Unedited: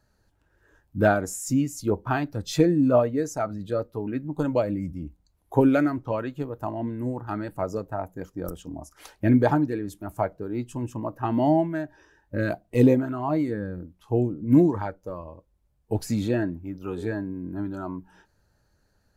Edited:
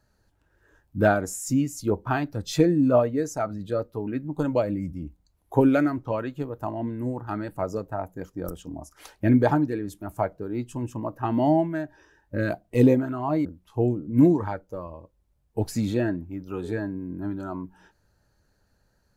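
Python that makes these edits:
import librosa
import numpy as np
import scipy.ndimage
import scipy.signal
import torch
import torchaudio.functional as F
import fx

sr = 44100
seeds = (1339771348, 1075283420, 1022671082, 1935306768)

y = fx.edit(x, sr, fx.cut(start_s=13.45, length_s=0.34), tone=tone)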